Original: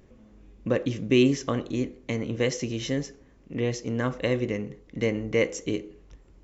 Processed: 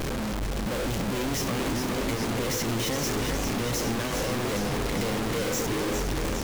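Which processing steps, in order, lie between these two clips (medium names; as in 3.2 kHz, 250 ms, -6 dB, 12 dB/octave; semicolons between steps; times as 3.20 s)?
one-bit comparator; modulated delay 410 ms, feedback 74%, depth 97 cents, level -6 dB; trim -1.5 dB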